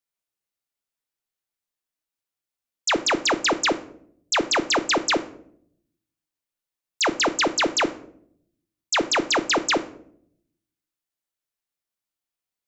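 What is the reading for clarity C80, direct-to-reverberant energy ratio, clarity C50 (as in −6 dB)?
19.5 dB, 10.5 dB, 16.0 dB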